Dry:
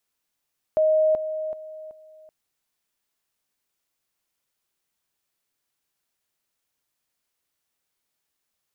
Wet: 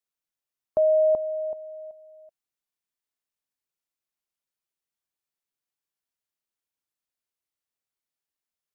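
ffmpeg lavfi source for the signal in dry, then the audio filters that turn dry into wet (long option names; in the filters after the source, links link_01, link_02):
-f lavfi -i "aevalsrc='pow(10,(-16-10*floor(t/0.38))/20)*sin(2*PI*625*t)':duration=1.52:sample_rate=44100"
-af "afftdn=noise_reduction=12:noise_floor=-44"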